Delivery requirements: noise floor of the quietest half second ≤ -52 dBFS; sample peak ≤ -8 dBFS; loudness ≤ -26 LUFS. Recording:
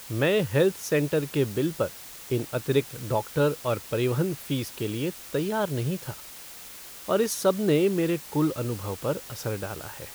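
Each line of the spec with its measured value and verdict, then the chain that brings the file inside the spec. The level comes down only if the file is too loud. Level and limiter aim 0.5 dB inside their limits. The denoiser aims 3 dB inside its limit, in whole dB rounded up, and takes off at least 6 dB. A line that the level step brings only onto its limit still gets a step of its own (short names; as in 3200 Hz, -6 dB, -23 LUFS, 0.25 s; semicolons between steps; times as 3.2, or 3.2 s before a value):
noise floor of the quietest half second -43 dBFS: fail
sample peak -10.5 dBFS: OK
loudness -27.0 LUFS: OK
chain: denoiser 12 dB, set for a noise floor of -43 dBFS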